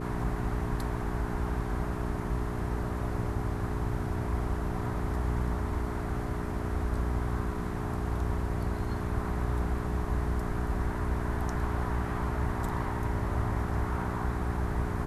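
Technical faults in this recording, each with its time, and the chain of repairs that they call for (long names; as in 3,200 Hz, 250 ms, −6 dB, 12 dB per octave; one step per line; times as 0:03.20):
mains hum 60 Hz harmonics 7 −36 dBFS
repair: hum removal 60 Hz, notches 7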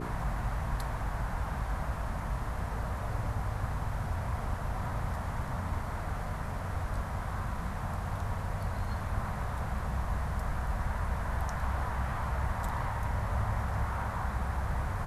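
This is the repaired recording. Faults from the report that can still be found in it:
none of them is left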